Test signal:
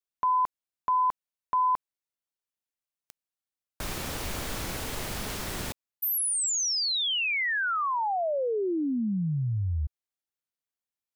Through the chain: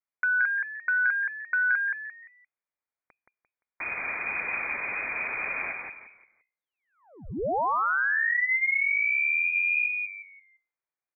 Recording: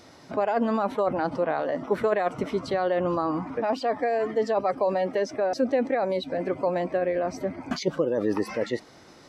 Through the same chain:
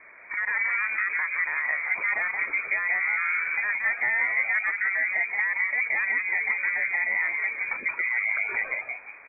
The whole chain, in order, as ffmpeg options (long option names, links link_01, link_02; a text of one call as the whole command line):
ffmpeg -i in.wav -filter_complex "[0:a]bandreject=frequency=60:width_type=h:width=6,bandreject=frequency=120:width_type=h:width=6,asplit=2[link_01][link_02];[link_02]acompressor=threshold=-33dB:ratio=6:attack=46:release=36:knee=1:detection=peak,volume=-2dB[link_03];[link_01][link_03]amix=inputs=2:normalize=0,alimiter=limit=-16dB:level=0:latency=1:release=129,asplit=5[link_04][link_05][link_06][link_07][link_08];[link_05]adelay=173,afreqshift=-120,volume=-3.5dB[link_09];[link_06]adelay=346,afreqshift=-240,volume=-14dB[link_10];[link_07]adelay=519,afreqshift=-360,volume=-24.4dB[link_11];[link_08]adelay=692,afreqshift=-480,volume=-34.9dB[link_12];[link_04][link_09][link_10][link_11][link_12]amix=inputs=5:normalize=0,lowpass=frequency=2100:width_type=q:width=0.5098,lowpass=frequency=2100:width_type=q:width=0.6013,lowpass=frequency=2100:width_type=q:width=0.9,lowpass=frequency=2100:width_type=q:width=2.563,afreqshift=-2500,volume=-3dB" out.wav